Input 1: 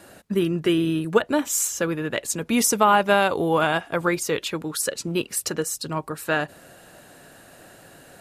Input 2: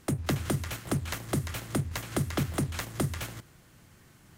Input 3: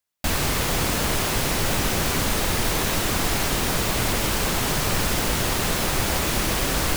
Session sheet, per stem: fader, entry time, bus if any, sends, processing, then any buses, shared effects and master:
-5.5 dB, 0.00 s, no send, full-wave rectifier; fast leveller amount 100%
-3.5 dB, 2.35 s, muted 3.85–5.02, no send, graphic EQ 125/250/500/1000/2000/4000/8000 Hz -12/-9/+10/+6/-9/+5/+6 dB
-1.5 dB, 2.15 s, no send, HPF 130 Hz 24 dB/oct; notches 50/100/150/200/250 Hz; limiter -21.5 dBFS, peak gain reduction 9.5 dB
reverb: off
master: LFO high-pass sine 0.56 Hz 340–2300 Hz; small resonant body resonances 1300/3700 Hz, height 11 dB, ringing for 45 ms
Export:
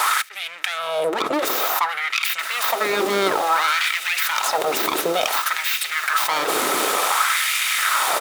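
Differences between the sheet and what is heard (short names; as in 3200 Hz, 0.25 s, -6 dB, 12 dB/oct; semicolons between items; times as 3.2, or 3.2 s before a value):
stem 2: missing graphic EQ 125/250/500/1000/2000/4000/8000 Hz -12/-9/+10/+6/-9/+5/+6 dB; stem 3: missing HPF 130 Hz 24 dB/oct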